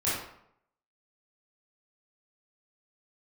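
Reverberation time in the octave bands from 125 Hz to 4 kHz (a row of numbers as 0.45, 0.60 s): 0.70, 0.70, 0.70, 0.70, 0.60, 0.45 s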